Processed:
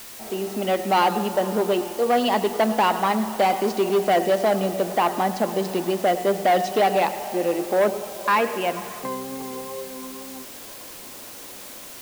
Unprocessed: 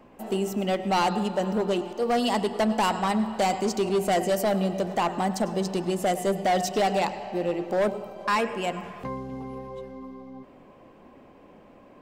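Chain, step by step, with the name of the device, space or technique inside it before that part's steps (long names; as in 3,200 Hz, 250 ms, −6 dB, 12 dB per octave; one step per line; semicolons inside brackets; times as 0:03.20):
dictaphone (band-pass filter 250–3,400 Hz; automatic gain control gain up to 7 dB; tape wow and flutter 22 cents; white noise bed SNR 17 dB)
level −2 dB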